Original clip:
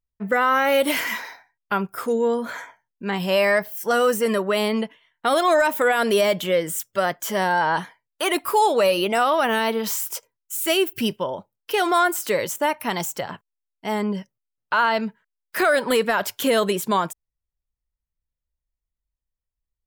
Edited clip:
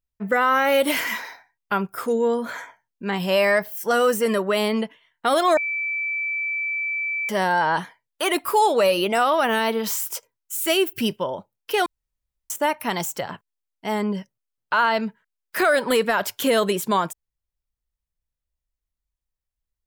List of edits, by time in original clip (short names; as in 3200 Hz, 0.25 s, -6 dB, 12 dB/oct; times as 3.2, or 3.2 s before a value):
5.57–7.29 bleep 2320 Hz -23 dBFS
11.86–12.5 room tone